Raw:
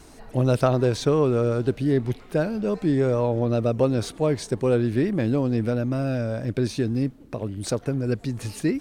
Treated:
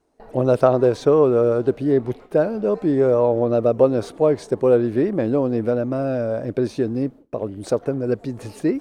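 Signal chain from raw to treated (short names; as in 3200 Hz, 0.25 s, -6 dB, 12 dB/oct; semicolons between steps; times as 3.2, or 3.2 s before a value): dynamic EQ 1200 Hz, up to +3 dB, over -41 dBFS, Q 2; gate with hold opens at -35 dBFS; bell 530 Hz +13.5 dB 2.5 oct; gain -6.5 dB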